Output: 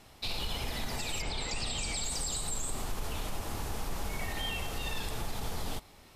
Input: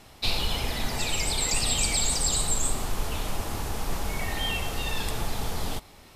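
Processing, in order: 1.21–2.02 LPF 3700 Hz -> 9100 Hz 12 dB/oct; limiter -20 dBFS, peak gain reduction 7.5 dB; gain -5 dB

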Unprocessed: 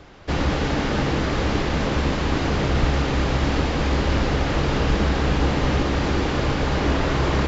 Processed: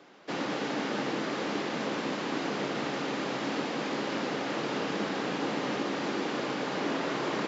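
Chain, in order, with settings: HPF 200 Hz 24 dB/oct; gain -7.5 dB

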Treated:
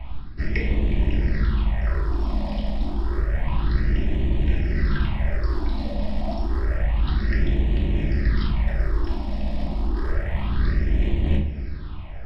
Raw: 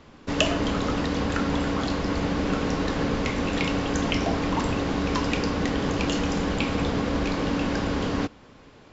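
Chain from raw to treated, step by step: rattling part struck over -30 dBFS, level -22 dBFS; resonant low shelf 130 Hz +10.5 dB, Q 1.5; reverse; compressor 10:1, threshold -31 dBFS, peak gain reduction 17.5 dB; reverse; wide varispeed 0.728×; phaser stages 6, 0.29 Hz, lowest notch 100–1400 Hz; reverb RT60 0.60 s, pre-delay 3 ms, DRR -1 dB; gain +7 dB

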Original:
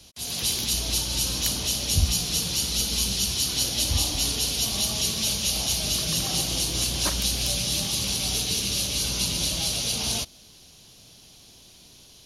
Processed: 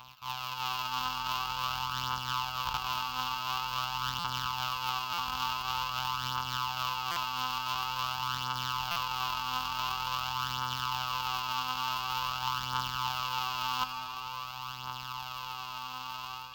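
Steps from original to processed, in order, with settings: sample sorter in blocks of 256 samples; resonant low shelf 290 Hz -9 dB, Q 1.5; speed mistake 45 rpm record played at 33 rpm; AGC gain up to 11 dB; crackle 64/s -44 dBFS; EQ curve 180 Hz 0 dB, 320 Hz -29 dB, 560 Hz -16 dB, 1000 Hz +13 dB, 1900 Hz -10 dB, 2700 Hz +11 dB, 5900 Hz +2 dB, 10000 Hz -16 dB, 15000 Hz +10 dB; reverse; compressor 8:1, threshold -29 dBFS, peak gain reduction 17 dB; reverse; HPF 73 Hz 6 dB/oct; on a send at -4.5 dB: reverb RT60 3.6 s, pre-delay 40 ms; on the sum: phaser 0.47 Hz, delay 3.9 ms, feedback 45%; stuck buffer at 4.19/5.13/7.11/8.91, samples 256, times 8; Doppler distortion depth 0.21 ms; gain -1.5 dB

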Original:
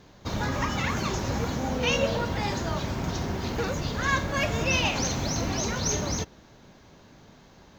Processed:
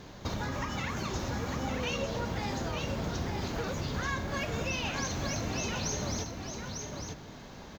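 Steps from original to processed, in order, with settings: compressor 5:1, threshold -38 dBFS, peak gain reduction 16 dB; echo 0.9 s -5.5 dB; gain +5 dB

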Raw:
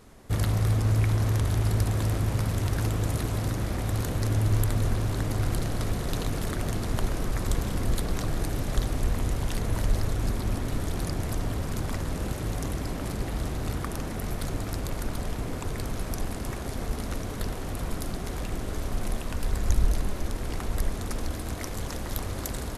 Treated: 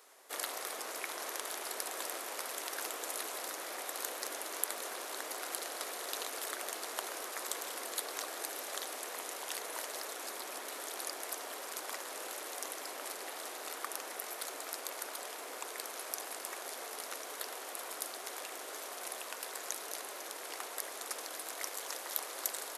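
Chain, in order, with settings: Bessel high-pass 650 Hz, order 6; high shelf 7600 Hz +6.5 dB; gain -3 dB

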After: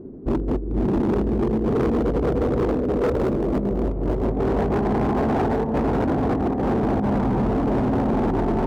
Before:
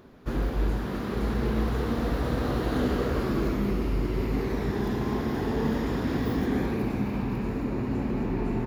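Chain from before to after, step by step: notches 60/120/180/240/300/360/420/480/540 Hz; negative-ratio compressor -29 dBFS, ratio -0.5; low-pass sweep 350 Hz -> 750 Hz, 1.12–4.89; hard clip -26.5 dBFS, distortion -10 dB; high shelf 7000 Hz +6 dB, from 3.08 s +11.5 dB, from 4.25 s +3 dB; running maximum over 3 samples; gain +9 dB

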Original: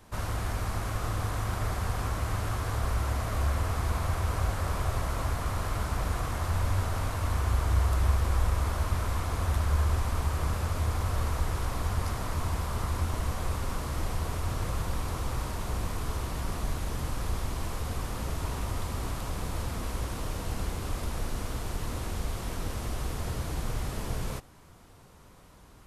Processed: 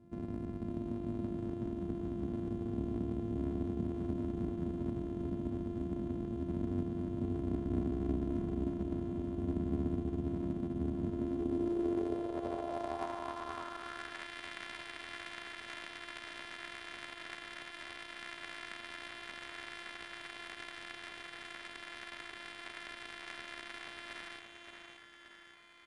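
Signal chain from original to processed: sample sorter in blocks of 128 samples; in parallel at +1.5 dB: compressor 6:1, threshold -41 dBFS, peak gain reduction 20 dB; on the sum: added harmonics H 8 -28 dB, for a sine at -13 dBFS; on a send: feedback echo 0.575 s, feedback 49%, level -6 dB; on the sum: band-pass sweep 200 Hz -> 1900 Hz, 11–14.31; IMA ADPCM 88 kbps 22050 Hz

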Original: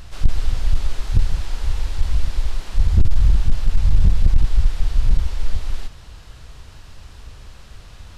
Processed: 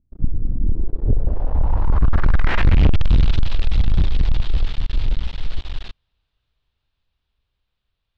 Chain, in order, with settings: Doppler pass-by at 2.47, 19 m/s, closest 4.4 m; sample leveller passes 5; low-pass sweep 270 Hz -> 3600 Hz, 0.58–3.12

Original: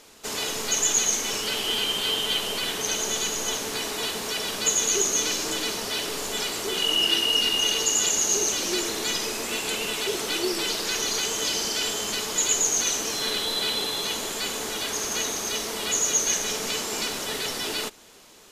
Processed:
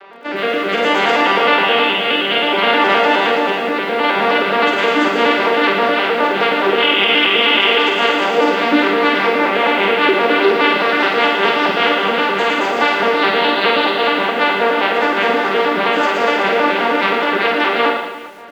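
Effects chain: arpeggiated vocoder minor triad, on G3, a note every 0.105 s; HPF 810 Hz 6 dB/oct; modulation noise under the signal 17 dB; rotary speaker horn 0.6 Hz, later 5 Hz, at 3.92; harmoniser -4 st -15 dB; band-pass 1300 Hz, Q 0.52; air absorption 460 m; reverse bouncing-ball echo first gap 50 ms, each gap 1.25×, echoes 5; maximiser +28 dB; lo-fi delay 0.114 s, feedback 35%, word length 6-bit, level -11 dB; gain -2.5 dB

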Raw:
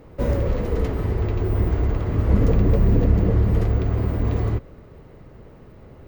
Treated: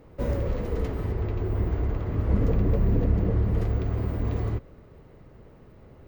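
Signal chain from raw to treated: 1.12–3.58 high shelf 4800 Hz -6.5 dB; gain -5.5 dB

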